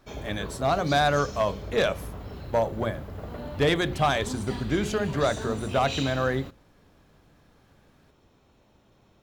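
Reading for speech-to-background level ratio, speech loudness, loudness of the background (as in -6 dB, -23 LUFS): 10.5 dB, -26.5 LUFS, -37.0 LUFS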